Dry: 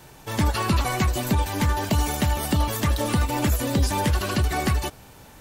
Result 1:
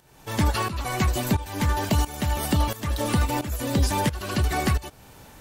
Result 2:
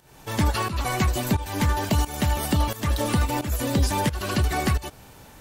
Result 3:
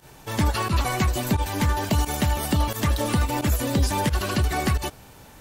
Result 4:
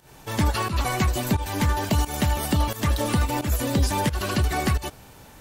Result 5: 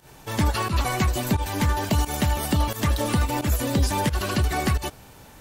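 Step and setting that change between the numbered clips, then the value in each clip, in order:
volume shaper, release: 507 ms, 299 ms, 78 ms, 183 ms, 122 ms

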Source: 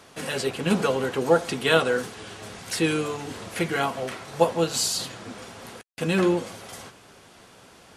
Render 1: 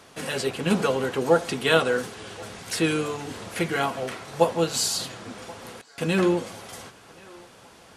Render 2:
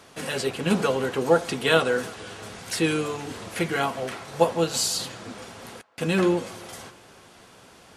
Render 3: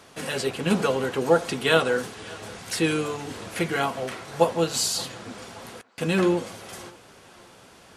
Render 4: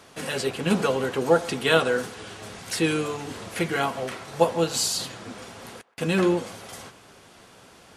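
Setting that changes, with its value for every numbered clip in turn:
band-passed feedback delay, time: 1079 ms, 329 ms, 574 ms, 125 ms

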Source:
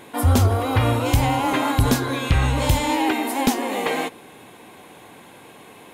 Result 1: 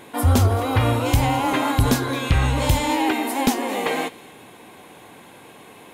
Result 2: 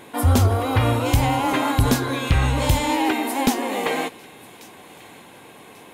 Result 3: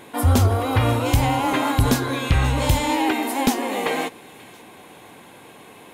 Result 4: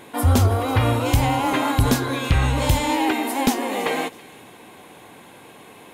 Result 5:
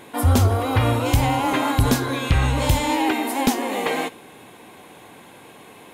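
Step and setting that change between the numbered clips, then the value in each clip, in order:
feedback echo behind a high-pass, time: 219 ms, 1140 ms, 534 ms, 329 ms, 62 ms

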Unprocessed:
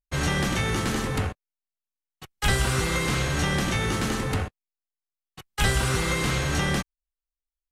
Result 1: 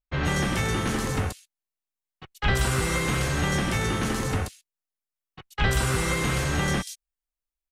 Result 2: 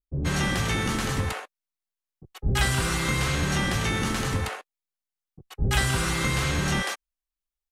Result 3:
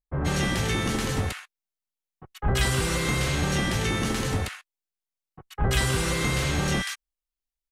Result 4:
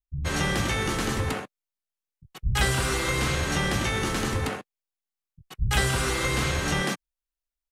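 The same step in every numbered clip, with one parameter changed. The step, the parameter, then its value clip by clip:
bands offset in time, split: 4 kHz, 460 Hz, 1.3 kHz, 160 Hz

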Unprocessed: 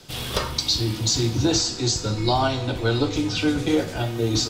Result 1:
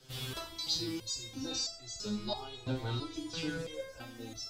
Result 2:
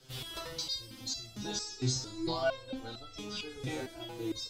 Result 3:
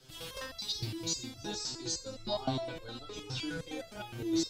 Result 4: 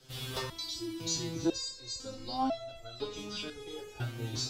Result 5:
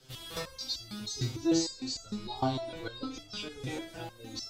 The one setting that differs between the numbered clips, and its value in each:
resonator arpeggio, rate: 3 Hz, 4.4 Hz, 9.7 Hz, 2 Hz, 6.6 Hz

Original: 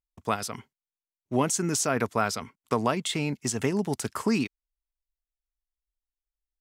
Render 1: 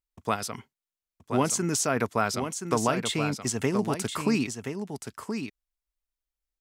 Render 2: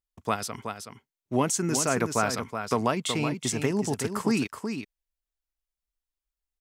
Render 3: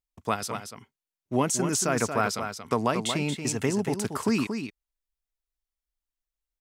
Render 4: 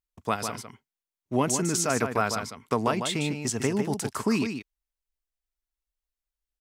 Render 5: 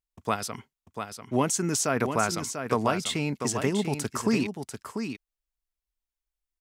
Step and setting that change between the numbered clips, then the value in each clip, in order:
delay, time: 1025 ms, 374 ms, 230 ms, 151 ms, 693 ms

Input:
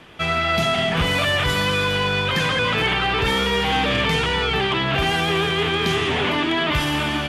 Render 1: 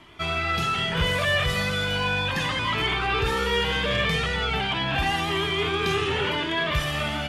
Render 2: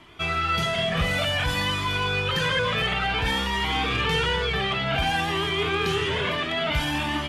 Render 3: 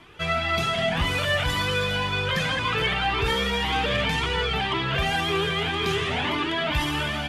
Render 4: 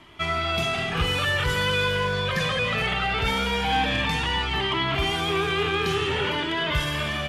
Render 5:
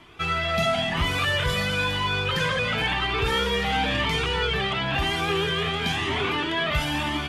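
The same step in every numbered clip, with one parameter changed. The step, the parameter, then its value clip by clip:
Shepard-style flanger, rate: 0.37 Hz, 0.55 Hz, 1.9 Hz, 0.21 Hz, 0.98 Hz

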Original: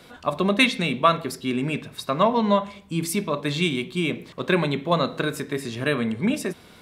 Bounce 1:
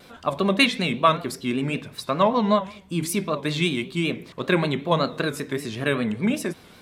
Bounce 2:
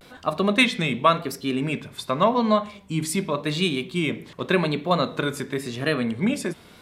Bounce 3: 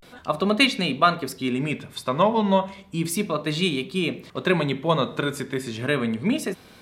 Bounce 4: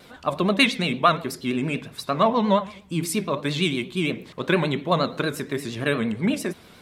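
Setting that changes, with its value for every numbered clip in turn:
vibrato, rate: 5.2 Hz, 0.89 Hz, 0.33 Hz, 8.6 Hz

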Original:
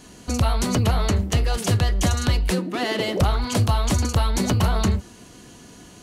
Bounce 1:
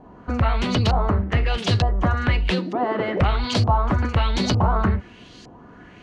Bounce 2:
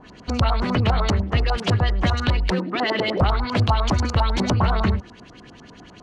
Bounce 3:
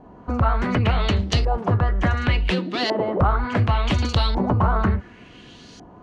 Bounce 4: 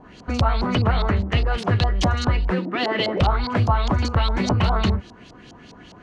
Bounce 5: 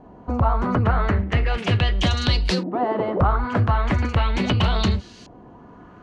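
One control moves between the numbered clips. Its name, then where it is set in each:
LFO low-pass, rate: 1.1 Hz, 10 Hz, 0.69 Hz, 4.9 Hz, 0.38 Hz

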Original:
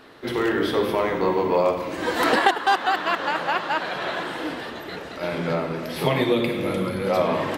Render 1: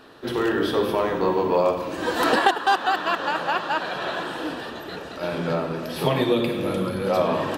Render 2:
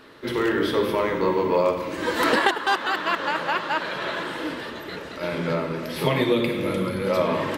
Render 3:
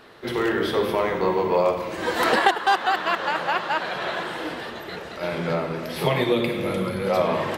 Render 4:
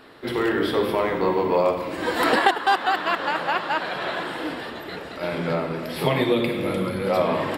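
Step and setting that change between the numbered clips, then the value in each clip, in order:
band-stop, frequency: 2.1 kHz, 740 Hz, 280 Hz, 6.2 kHz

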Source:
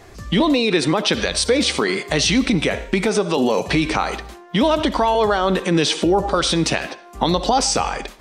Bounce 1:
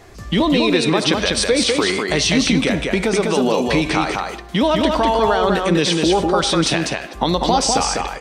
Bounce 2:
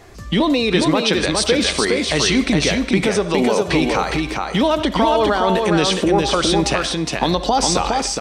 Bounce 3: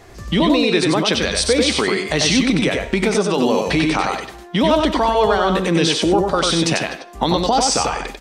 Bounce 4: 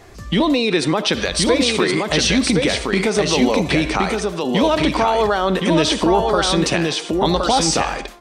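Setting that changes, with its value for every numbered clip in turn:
delay, time: 199 ms, 412 ms, 94 ms, 1069 ms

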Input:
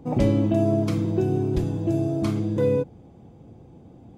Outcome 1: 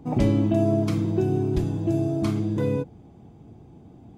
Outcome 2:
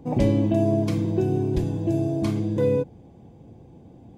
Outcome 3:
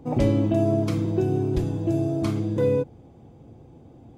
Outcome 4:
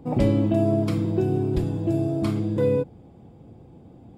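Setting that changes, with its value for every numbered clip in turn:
band-stop, frequency: 520 Hz, 1.3 kHz, 190 Hz, 6.2 kHz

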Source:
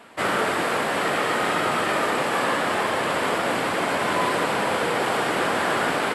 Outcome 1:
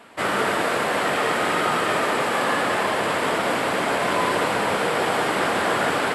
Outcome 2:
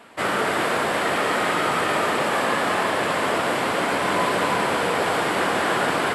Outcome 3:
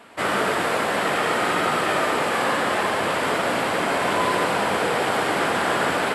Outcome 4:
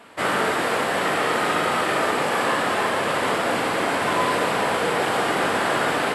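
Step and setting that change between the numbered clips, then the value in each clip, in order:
gated-style reverb, gate: 220 ms, 390 ms, 140 ms, 80 ms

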